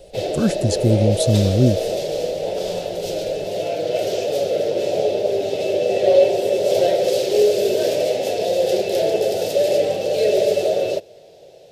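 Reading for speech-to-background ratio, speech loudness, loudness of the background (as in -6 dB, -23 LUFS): 0.5 dB, -19.5 LUFS, -20.0 LUFS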